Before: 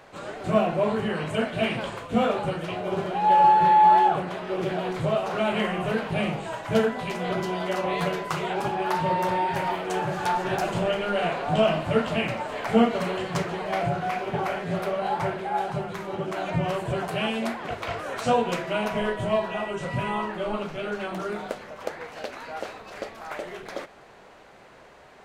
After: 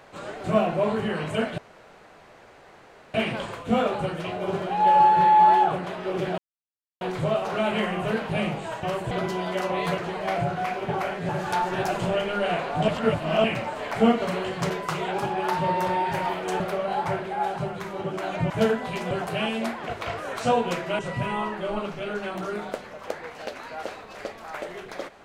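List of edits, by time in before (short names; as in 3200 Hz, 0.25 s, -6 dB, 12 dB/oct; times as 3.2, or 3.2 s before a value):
1.58 insert room tone 1.56 s
4.82 insert silence 0.63 s
6.64–7.25 swap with 16.64–16.92
8.12–10.02 swap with 13.43–14.74
11.61–12.17 reverse
18.8–19.76 cut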